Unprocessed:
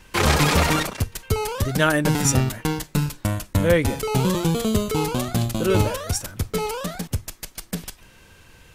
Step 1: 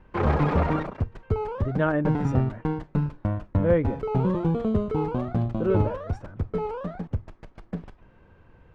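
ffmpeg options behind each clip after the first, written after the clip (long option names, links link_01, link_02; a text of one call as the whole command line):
ffmpeg -i in.wav -af "lowpass=1100,volume=-2.5dB" out.wav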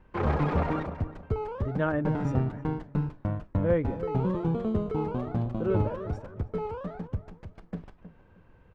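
ffmpeg -i in.wav -filter_complex "[0:a]asplit=2[link_01][link_02];[link_02]adelay=315,lowpass=frequency=1100:poles=1,volume=-12dB,asplit=2[link_03][link_04];[link_04]adelay=315,lowpass=frequency=1100:poles=1,volume=0.28,asplit=2[link_05][link_06];[link_06]adelay=315,lowpass=frequency=1100:poles=1,volume=0.28[link_07];[link_01][link_03][link_05][link_07]amix=inputs=4:normalize=0,volume=-4dB" out.wav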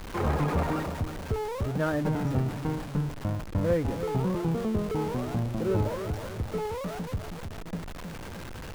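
ffmpeg -i in.wav -af "aeval=exprs='val(0)+0.5*0.0251*sgn(val(0))':channel_layout=same,volume=-2dB" out.wav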